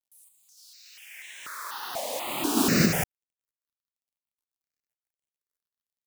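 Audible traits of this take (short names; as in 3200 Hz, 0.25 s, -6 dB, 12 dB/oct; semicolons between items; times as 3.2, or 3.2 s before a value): a quantiser's noise floor 12-bit, dither none; random-step tremolo; notches that jump at a steady rate 4.1 Hz 380–4700 Hz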